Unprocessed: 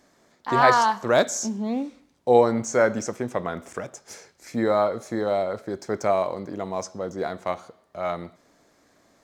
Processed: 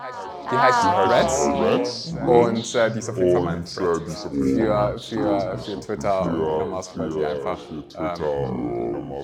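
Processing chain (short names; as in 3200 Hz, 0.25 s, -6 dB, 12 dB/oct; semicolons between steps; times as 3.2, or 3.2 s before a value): spectral noise reduction 6 dB; reverse echo 0.597 s -17.5 dB; echoes that change speed 0.134 s, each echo -5 st, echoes 2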